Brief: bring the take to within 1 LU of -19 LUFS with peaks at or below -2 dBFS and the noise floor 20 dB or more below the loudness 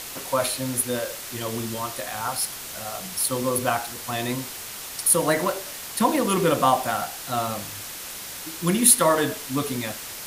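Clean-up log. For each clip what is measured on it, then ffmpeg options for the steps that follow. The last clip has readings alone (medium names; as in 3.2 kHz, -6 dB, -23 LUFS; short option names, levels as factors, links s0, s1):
noise floor -36 dBFS; noise floor target -44 dBFS; loudness -24.0 LUFS; peak level -2.0 dBFS; loudness target -19.0 LUFS
-> -af "afftdn=nr=8:nf=-36"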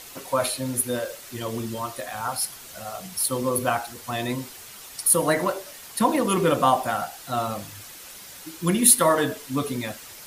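noise floor -43 dBFS; noise floor target -44 dBFS
-> -af "afftdn=nr=6:nf=-43"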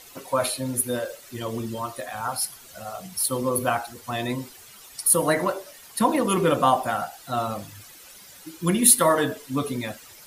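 noise floor -47 dBFS; loudness -24.0 LUFS; peak level -2.0 dBFS; loudness target -19.0 LUFS
-> -af "volume=1.78,alimiter=limit=0.794:level=0:latency=1"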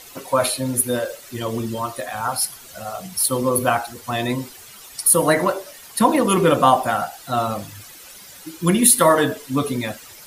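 loudness -19.5 LUFS; peak level -2.0 dBFS; noise floor -42 dBFS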